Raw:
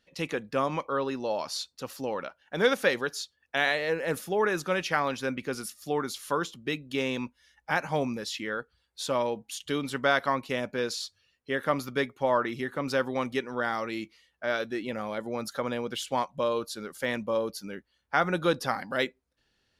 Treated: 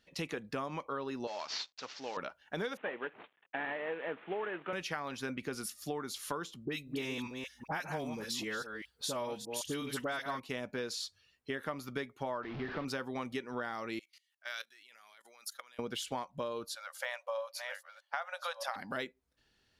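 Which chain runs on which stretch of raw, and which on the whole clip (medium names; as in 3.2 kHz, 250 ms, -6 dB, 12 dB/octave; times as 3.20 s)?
1.27–2.17 s: CVSD coder 32 kbps + high-pass 1.1 kHz 6 dB/octave
2.77–4.73 s: CVSD coder 16 kbps + high-pass 300 Hz
6.65–10.40 s: chunks repeated in reverse 197 ms, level -10 dB + treble shelf 7.8 kHz +8.5 dB + phase dispersion highs, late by 49 ms, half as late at 1.5 kHz
12.43–12.85 s: one-bit delta coder 32 kbps, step -29 dBFS + distance through air 360 m
13.99–15.79 s: Bessel high-pass 2.1 kHz + treble shelf 6.8 kHz +8 dB + level held to a coarse grid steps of 20 dB
16.75–18.76 s: chunks repeated in reverse 628 ms, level -9 dB + brick-wall FIR high-pass 510 Hz + treble shelf 5.8 kHz -4 dB
whole clip: band-stop 530 Hz, Q 14; compression 6:1, threshold -35 dBFS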